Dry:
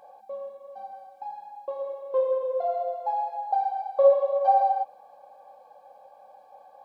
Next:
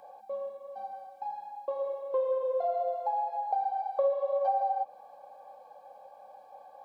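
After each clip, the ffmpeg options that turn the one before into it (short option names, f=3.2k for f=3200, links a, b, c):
-filter_complex "[0:a]acrossover=split=520|1700[a][b][c];[a]acompressor=threshold=-35dB:ratio=4[d];[b]acompressor=threshold=-30dB:ratio=4[e];[c]acompressor=threshold=-59dB:ratio=4[f];[d][e][f]amix=inputs=3:normalize=0"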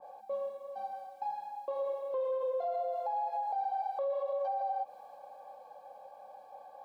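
-af "alimiter=level_in=4dB:limit=-24dB:level=0:latency=1:release=60,volume=-4dB,adynamicequalizer=threshold=0.00501:dfrequency=1600:dqfactor=0.7:tfrequency=1600:tqfactor=0.7:attack=5:release=100:ratio=0.375:range=2:mode=boostabove:tftype=highshelf"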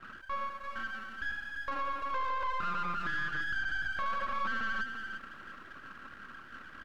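-filter_complex "[0:a]aeval=exprs='abs(val(0))':c=same,aecho=1:1:341:0.376,asplit=2[a][b];[b]highpass=f=720:p=1,volume=15dB,asoftclip=type=tanh:threshold=-25dB[c];[a][c]amix=inputs=2:normalize=0,lowpass=f=2.5k:p=1,volume=-6dB"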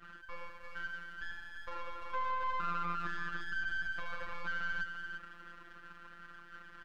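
-af "afftfilt=real='hypot(re,im)*cos(PI*b)':imag='0':win_size=1024:overlap=0.75,volume=-1dB"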